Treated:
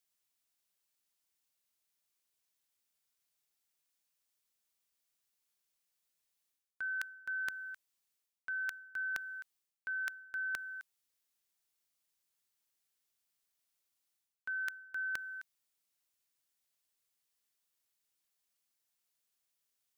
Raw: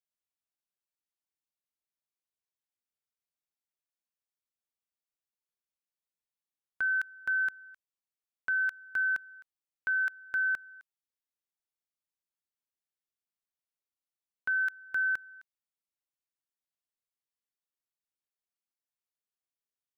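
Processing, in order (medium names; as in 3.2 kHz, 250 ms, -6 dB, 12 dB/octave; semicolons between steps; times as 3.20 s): treble shelf 2.3 kHz +8 dB; reverse; compression 4:1, threshold -44 dBFS, peak gain reduction 15.5 dB; reverse; trim +4 dB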